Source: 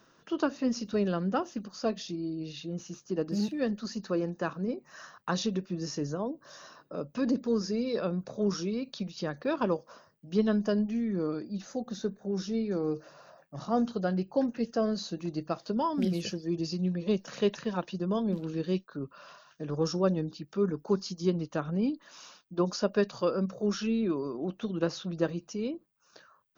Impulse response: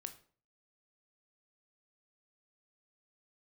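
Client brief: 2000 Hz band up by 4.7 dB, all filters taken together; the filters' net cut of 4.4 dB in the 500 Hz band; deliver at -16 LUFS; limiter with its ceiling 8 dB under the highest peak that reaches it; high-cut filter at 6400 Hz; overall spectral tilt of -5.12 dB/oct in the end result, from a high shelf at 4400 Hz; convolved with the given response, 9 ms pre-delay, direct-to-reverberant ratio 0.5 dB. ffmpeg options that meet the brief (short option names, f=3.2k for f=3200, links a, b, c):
-filter_complex "[0:a]lowpass=6.4k,equalizer=f=500:t=o:g=-6,equalizer=f=2k:t=o:g=5.5,highshelf=f=4.4k:g=8,alimiter=limit=-22.5dB:level=0:latency=1,asplit=2[a][b];[1:a]atrim=start_sample=2205,adelay=9[c];[b][c]afir=irnorm=-1:irlink=0,volume=3.5dB[d];[a][d]amix=inputs=2:normalize=0,volume=15dB"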